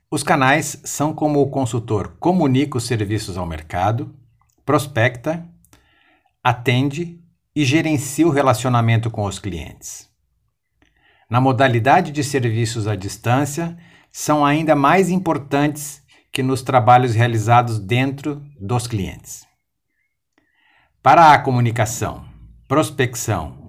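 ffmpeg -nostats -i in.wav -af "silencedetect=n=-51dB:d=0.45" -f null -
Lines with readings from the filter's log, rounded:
silence_start: 10.06
silence_end: 10.82 | silence_duration: 0.76
silence_start: 19.48
silence_end: 20.38 | silence_duration: 0.90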